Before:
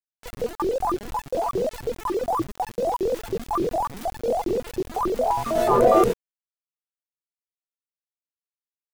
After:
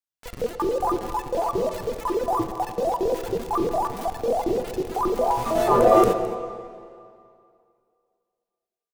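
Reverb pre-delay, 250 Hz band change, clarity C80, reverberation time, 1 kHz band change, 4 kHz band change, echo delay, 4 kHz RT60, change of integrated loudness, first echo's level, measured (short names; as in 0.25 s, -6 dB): 9 ms, +1.0 dB, 9.0 dB, 2.4 s, +1.0 dB, +0.5 dB, 0.213 s, 2.0 s, +0.5 dB, -16.5 dB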